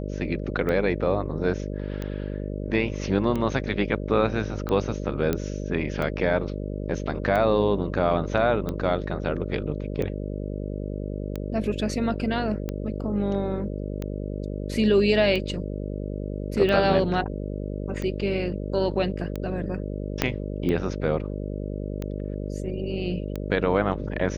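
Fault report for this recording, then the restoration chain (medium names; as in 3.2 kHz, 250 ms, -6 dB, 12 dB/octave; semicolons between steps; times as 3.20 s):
buzz 50 Hz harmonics 12 -31 dBFS
tick 45 rpm -17 dBFS
5.33 s: pop -11 dBFS
20.22 s: pop -6 dBFS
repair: de-click; de-hum 50 Hz, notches 12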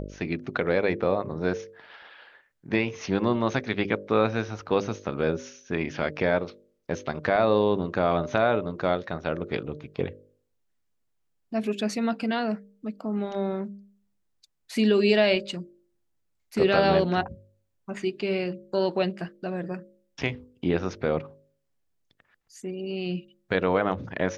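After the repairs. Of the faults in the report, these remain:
20.22 s: pop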